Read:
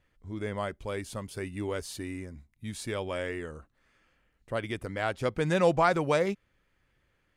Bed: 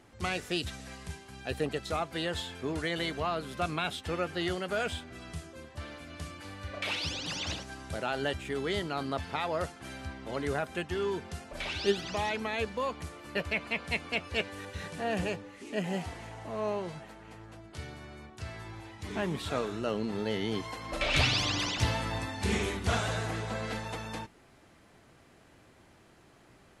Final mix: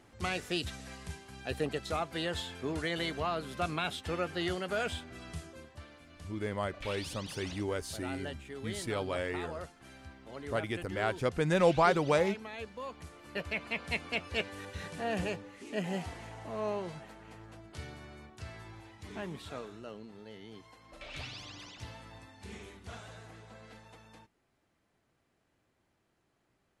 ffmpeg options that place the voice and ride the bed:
ffmpeg -i stem1.wav -i stem2.wav -filter_complex "[0:a]adelay=6000,volume=-1.5dB[link_01];[1:a]volume=6.5dB,afade=type=out:start_time=5.49:duration=0.38:silence=0.375837,afade=type=in:start_time=12.77:duration=1.13:silence=0.398107,afade=type=out:start_time=17.88:duration=2.26:silence=0.177828[link_02];[link_01][link_02]amix=inputs=2:normalize=0" out.wav

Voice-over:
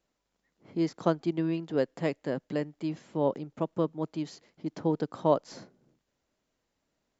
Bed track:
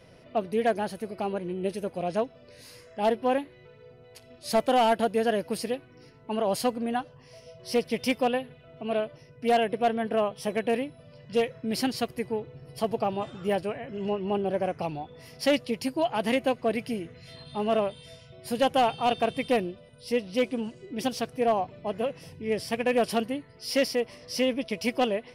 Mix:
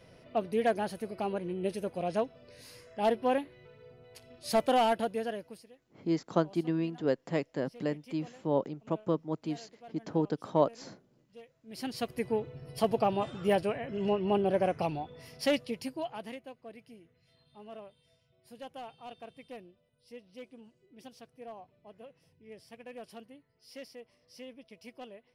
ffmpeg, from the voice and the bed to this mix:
ffmpeg -i stem1.wav -i stem2.wav -filter_complex "[0:a]adelay=5300,volume=-1.5dB[link_01];[1:a]volume=23.5dB,afade=type=out:start_time=4.72:duration=0.94:silence=0.0668344,afade=type=in:start_time=11.65:duration=0.71:silence=0.0473151,afade=type=out:start_time=14.8:duration=1.61:silence=0.0841395[link_02];[link_01][link_02]amix=inputs=2:normalize=0" out.wav

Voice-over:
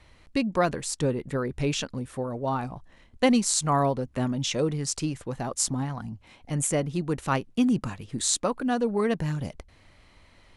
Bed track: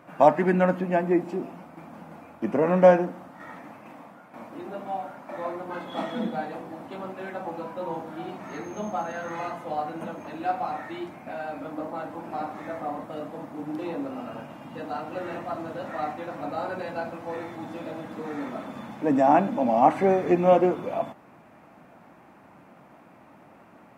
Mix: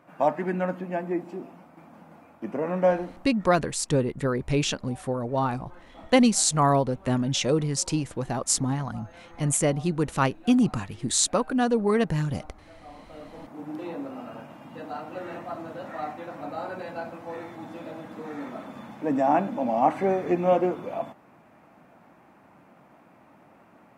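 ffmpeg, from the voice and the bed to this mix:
ffmpeg -i stem1.wav -i stem2.wav -filter_complex "[0:a]adelay=2900,volume=2.5dB[link_01];[1:a]volume=8dB,afade=type=out:start_time=3.03:duration=0.62:silence=0.281838,afade=type=in:start_time=12.82:duration=0.87:silence=0.199526[link_02];[link_01][link_02]amix=inputs=2:normalize=0" out.wav

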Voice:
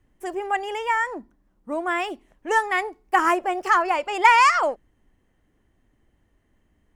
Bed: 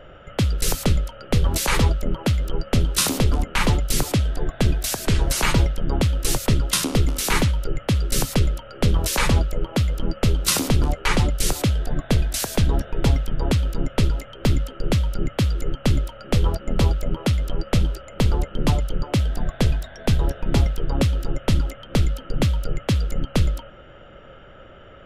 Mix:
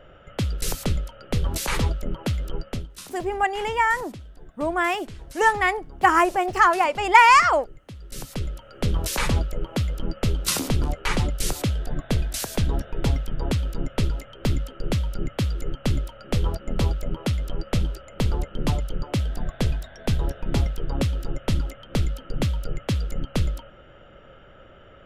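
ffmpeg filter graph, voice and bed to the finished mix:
ffmpeg -i stem1.wav -i stem2.wav -filter_complex "[0:a]adelay=2900,volume=2dB[link_01];[1:a]volume=12dB,afade=type=out:start_time=2.56:duration=0.33:silence=0.158489,afade=type=in:start_time=7.98:duration=1.01:silence=0.141254[link_02];[link_01][link_02]amix=inputs=2:normalize=0" out.wav

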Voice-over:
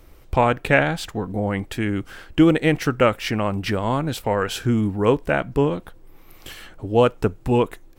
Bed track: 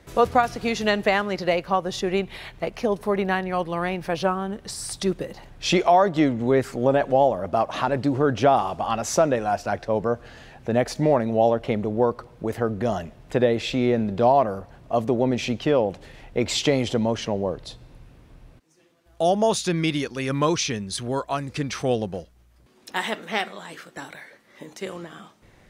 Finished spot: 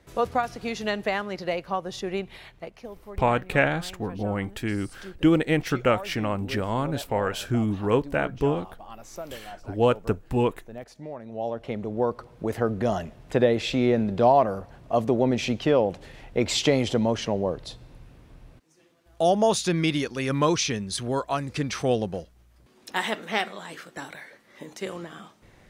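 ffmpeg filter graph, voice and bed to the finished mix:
ffmpeg -i stem1.wav -i stem2.wav -filter_complex "[0:a]adelay=2850,volume=-4.5dB[link_01];[1:a]volume=12dB,afade=type=out:start_time=2.31:duration=0.6:silence=0.237137,afade=type=in:start_time=11.19:duration=1.37:silence=0.125893[link_02];[link_01][link_02]amix=inputs=2:normalize=0" out.wav

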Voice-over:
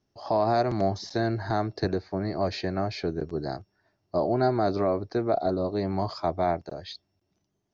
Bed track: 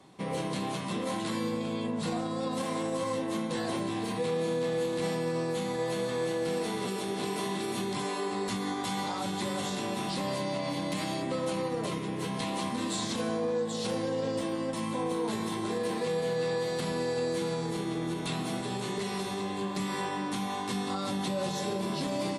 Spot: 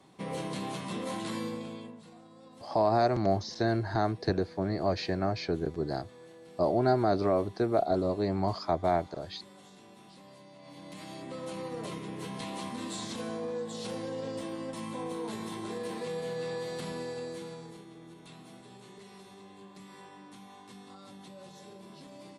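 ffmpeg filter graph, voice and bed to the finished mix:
ffmpeg -i stem1.wav -i stem2.wav -filter_complex "[0:a]adelay=2450,volume=-1.5dB[link_01];[1:a]volume=12.5dB,afade=type=out:start_time=1.38:duration=0.65:silence=0.125893,afade=type=in:start_time=10.56:duration=1.24:silence=0.16788,afade=type=out:start_time=16.86:duration=1.01:silence=0.251189[link_02];[link_01][link_02]amix=inputs=2:normalize=0" out.wav

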